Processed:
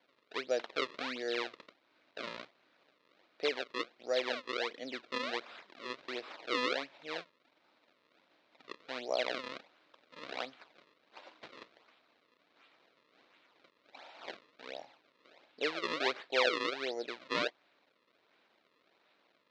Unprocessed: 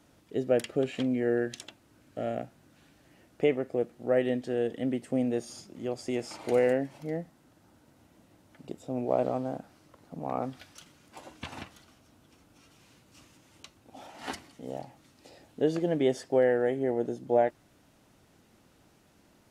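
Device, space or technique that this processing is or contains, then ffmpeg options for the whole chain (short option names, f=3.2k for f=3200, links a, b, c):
circuit-bent sampling toy: -af "acrusher=samples=33:mix=1:aa=0.000001:lfo=1:lforange=52.8:lforate=1.4,highpass=580,equalizer=f=800:t=q:w=4:g=-4,equalizer=f=2.3k:t=q:w=4:g=4,equalizer=f=3.9k:t=q:w=4:g=6,lowpass=f=4.7k:w=0.5412,lowpass=f=4.7k:w=1.3066,volume=-3dB"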